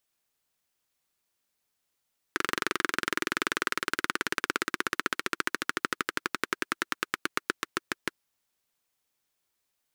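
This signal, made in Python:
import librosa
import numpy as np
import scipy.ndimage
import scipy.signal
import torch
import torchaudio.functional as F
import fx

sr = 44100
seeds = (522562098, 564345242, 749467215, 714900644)

y = fx.engine_single_rev(sr, seeds[0], length_s=5.79, rpm=2800, resonances_hz=(350.0, 1400.0), end_rpm=700)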